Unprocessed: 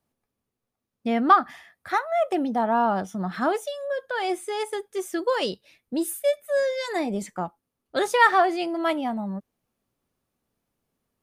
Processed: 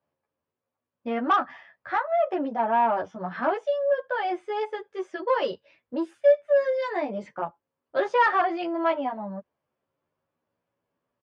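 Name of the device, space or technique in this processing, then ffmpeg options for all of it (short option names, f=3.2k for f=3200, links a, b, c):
barber-pole flanger into a guitar amplifier: -filter_complex "[0:a]asplit=2[a][b];[b]adelay=11.3,afreqshift=0.42[c];[a][c]amix=inputs=2:normalize=1,asoftclip=type=tanh:threshold=-19dB,highpass=93,equalizer=f=210:t=q:w=4:g=-6,equalizer=f=570:t=q:w=4:g=8,equalizer=f=1k:t=q:w=4:g=7,equalizer=f=1.6k:t=q:w=4:g=4,equalizer=f=3.9k:t=q:w=4:g=-8,lowpass=f=4.3k:w=0.5412,lowpass=f=4.3k:w=1.3066"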